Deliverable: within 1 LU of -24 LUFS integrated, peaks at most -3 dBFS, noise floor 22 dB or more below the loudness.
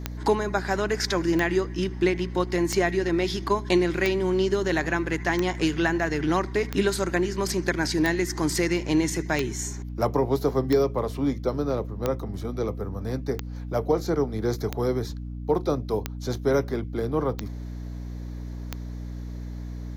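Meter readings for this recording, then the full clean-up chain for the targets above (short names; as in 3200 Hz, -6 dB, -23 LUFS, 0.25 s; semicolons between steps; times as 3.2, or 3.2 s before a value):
clicks 15; hum 60 Hz; harmonics up to 300 Hz; hum level -32 dBFS; loudness -26.0 LUFS; peak -10.0 dBFS; loudness target -24.0 LUFS
-> de-click; de-hum 60 Hz, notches 5; gain +2 dB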